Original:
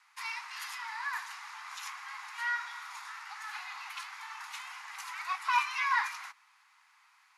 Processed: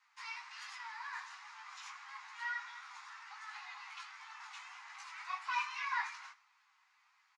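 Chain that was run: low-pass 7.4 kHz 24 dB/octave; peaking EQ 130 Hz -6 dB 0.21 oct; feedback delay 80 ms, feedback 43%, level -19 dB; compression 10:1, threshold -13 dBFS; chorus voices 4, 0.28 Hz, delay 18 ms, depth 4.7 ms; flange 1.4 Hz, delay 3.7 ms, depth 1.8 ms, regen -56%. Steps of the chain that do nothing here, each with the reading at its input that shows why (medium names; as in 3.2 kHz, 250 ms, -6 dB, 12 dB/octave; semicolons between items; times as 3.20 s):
peaking EQ 130 Hz: input has nothing below 680 Hz; compression, threshold -13 dBFS: peak at its input -15.5 dBFS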